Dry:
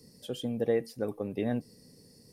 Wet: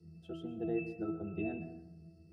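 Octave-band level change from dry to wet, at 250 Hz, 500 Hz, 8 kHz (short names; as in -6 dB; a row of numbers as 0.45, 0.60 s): -4.0 dB, -10.0 dB, under -20 dB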